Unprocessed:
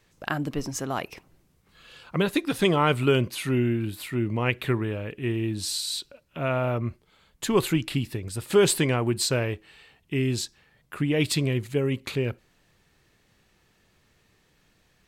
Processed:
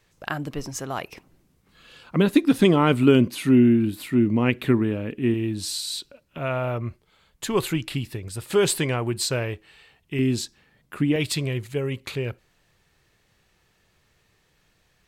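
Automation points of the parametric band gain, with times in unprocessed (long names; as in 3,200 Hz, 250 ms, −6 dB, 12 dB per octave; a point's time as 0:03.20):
parametric band 250 Hz 0.92 octaves
−3.5 dB
from 0:01.12 +4.5 dB
from 0:02.16 +11.5 dB
from 0:05.34 +3.5 dB
from 0:06.38 −3 dB
from 0:10.19 +6 dB
from 0:11.16 −5 dB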